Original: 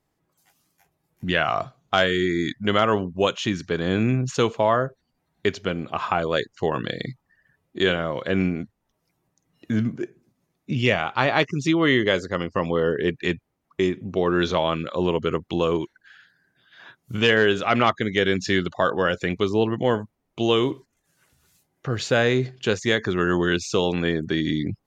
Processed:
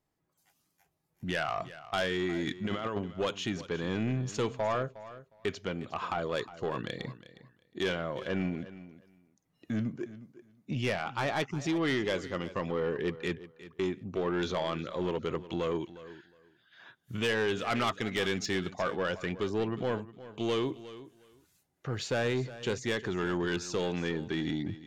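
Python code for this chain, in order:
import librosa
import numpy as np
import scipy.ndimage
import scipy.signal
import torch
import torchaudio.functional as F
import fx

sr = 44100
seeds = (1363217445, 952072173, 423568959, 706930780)

y = fx.over_compress(x, sr, threshold_db=-23.0, ratio=-0.5, at=(2.47, 2.99))
y = fx.high_shelf(y, sr, hz=2200.0, db=6.5, at=(17.7, 18.46))
y = 10.0 ** (-16.0 / 20.0) * np.tanh(y / 10.0 ** (-16.0 / 20.0))
y = fx.echo_feedback(y, sr, ms=360, feedback_pct=17, wet_db=-16)
y = y * librosa.db_to_amplitude(-7.5)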